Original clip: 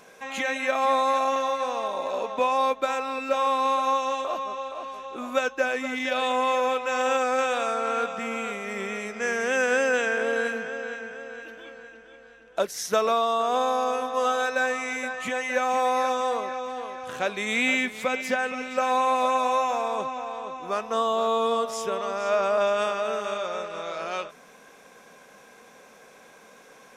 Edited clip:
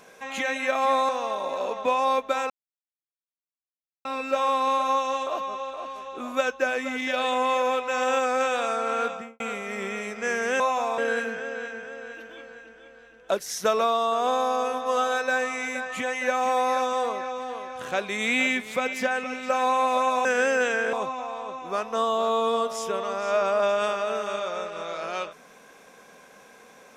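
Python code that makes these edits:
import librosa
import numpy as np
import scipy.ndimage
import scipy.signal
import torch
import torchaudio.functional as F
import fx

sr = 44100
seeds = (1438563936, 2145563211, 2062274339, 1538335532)

y = fx.studio_fade_out(x, sr, start_s=8.07, length_s=0.31)
y = fx.edit(y, sr, fx.cut(start_s=1.09, length_s=0.53),
    fx.insert_silence(at_s=3.03, length_s=1.55),
    fx.swap(start_s=9.58, length_s=0.68, other_s=19.53, other_length_s=0.38), tone=tone)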